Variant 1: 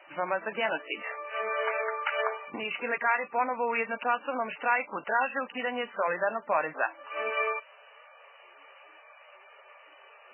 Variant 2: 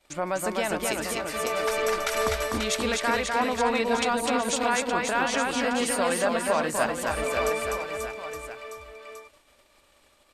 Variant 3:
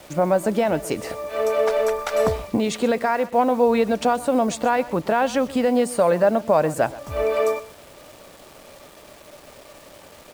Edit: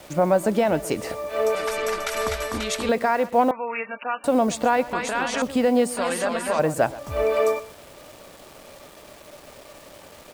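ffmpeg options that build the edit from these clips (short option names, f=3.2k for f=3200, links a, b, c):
-filter_complex "[1:a]asplit=3[a][b][c];[2:a]asplit=5[d][e][f][g][h];[d]atrim=end=1.552[i];[a]atrim=start=1.548:end=2.892[j];[e]atrim=start=2.888:end=3.512[k];[0:a]atrim=start=3.508:end=4.242[l];[f]atrim=start=4.238:end=4.932[m];[b]atrim=start=4.928:end=5.422[n];[g]atrim=start=5.418:end=5.972[o];[c]atrim=start=5.968:end=6.592[p];[h]atrim=start=6.588[q];[i][j]acrossfade=d=0.004:c1=hsin:c2=hsin[r];[r][k]acrossfade=d=0.004:c1=hsin:c2=hsin[s];[s][l]acrossfade=d=0.004:c1=hsin:c2=hsin[t];[t][m]acrossfade=d=0.004:c1=hsin:c2=hsin[u];[u][n]acrossfade=d=0.004:c1=hsin:c2=hsin[v];[v][o]acrossfade=d=0.004:c1=hsin:c2=hsin[w];[w][p]acrossfade=d=0.004:c1=hsin:c2=hsin[x];[x][q]acrossfade=d=0.004:c1=hsin:c2=hsin"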